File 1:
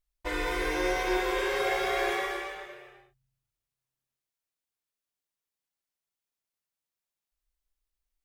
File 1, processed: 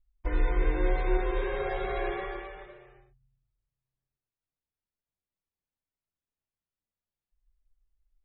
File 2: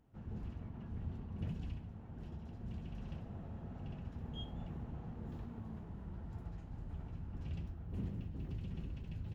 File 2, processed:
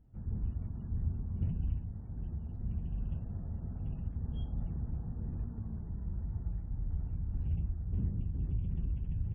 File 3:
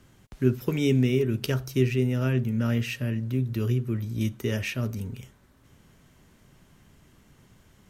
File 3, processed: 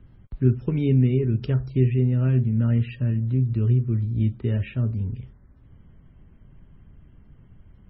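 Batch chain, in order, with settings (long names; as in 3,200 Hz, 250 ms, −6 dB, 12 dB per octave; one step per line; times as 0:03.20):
RIAA equalisation playback
level −5 dB
MP3 16 kbit/s 24,000 Hz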